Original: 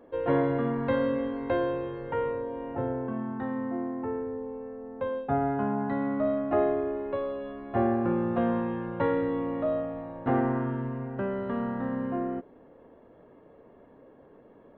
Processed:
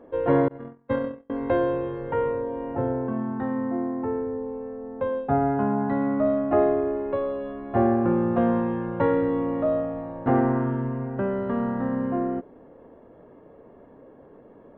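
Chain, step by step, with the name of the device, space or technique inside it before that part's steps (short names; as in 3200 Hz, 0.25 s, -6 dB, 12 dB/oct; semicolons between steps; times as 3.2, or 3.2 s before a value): 0.48–1.3 gate -24 dBFS, range -39 dB; through cloth (high shelf 2900 Hz -11 dB); gain +5 dB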